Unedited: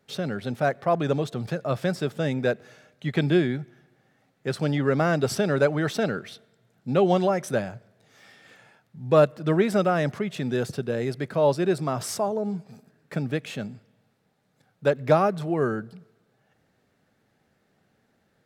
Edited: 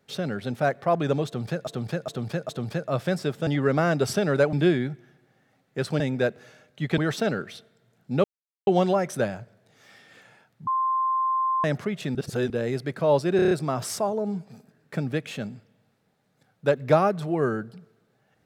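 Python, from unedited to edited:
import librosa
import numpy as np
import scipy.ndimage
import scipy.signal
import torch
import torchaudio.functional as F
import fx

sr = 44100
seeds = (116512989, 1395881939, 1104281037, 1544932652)

y = fx.edit(x, sr, fx.repeat(start_s=1.26, length_s=0.41, count=4),
    fx.swap(start_s=2.24, length_s=0.98, other_s=4.69, other_length_s=1.06),
    fx.insert_silence(at_s=7.01, length_s=0.43),
    fx.bleep(start_s=9.01, length_s=0.97, hz=1050.0, db=-21.0),
    fx.reverse_span(start_s=10.49, length_s=0.35),
    fx.stutter(start_s=11.7, slice_s=0.03, count=6), tone=tone)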